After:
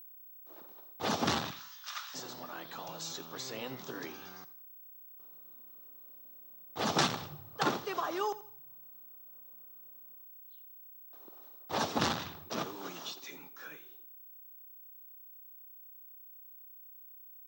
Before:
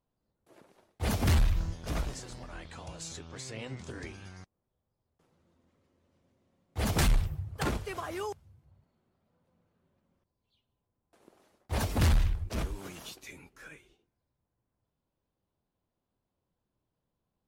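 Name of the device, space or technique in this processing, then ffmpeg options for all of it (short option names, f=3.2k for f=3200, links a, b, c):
old television with a line whistle: -filter_complex "[0:a]asettb=1/sr,asplit=3[a][b][c];[a]atrim=end=1.504[d];[b]atrim=start=1.5:end=2.14,asetpts=PTS-STARTPTS,afade=t=in:d=0.004:c=qsin,afade=t=out:st=0.636:d=0.004:c=qsin,highpass=f=1.3k:w=0.5412,highpass=f=1.3k:w=1.3066[e];[c]atrim=start=2.136[f];[d][e]acrossfade=d=0.004:c1=hsin:c2=qsin[g];[g][f]acrossfade=d=0.004:c1=qsin:c2=hsin,highpass=f=170:w=0.5412,highpass=f=170:w=1.3066,equalizer=f=200:t=q:w=4:g=-5,equalizer=f=830:t=q:w=4:g=4,equalizer=f=1.2k:t=q:w=4:g=6,equalizer=f=2.2k:t=q:w=4:g=-5,equalizer=f=3.7k:t=q:w=4:g=5,equalizer=f=5.7k:t=q:w=4:g=4,lowpass=f=6.6k:w=0.5412,lowpass=f=6.6k:w=1.3066,aeval=exprs='val(0)+0.00316*sin(2*PI*15734*n/s)':c=same,aecho=1:1:84|168|252:0.15|0.0494|0.0163,volume=1dB"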